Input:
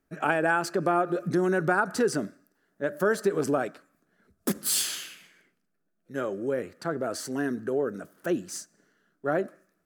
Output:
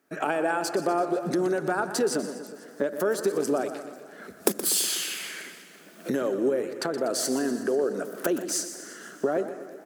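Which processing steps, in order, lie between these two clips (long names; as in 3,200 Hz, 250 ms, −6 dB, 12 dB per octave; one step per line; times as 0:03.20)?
camcorder AGC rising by 25 dB per second
dynamic equaliser 1,600 Hz, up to −7 dB, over −39 dBFS, Q 0.85
in parallel at +2.5 dB: downward compressor, threshold −40 dBFS, peak gain reduction 24 dB
on the sum: high-pass filter 280 Hz 12 dB per octave
soft clipping −8.5 dBFS, distortion −23 dB
on a send: repeating echo 122 ms, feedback 58%, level −12 dB
on the sum: feedback echo with a swinging delay time 166 ms, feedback 60%, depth 188 cents, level −17 dB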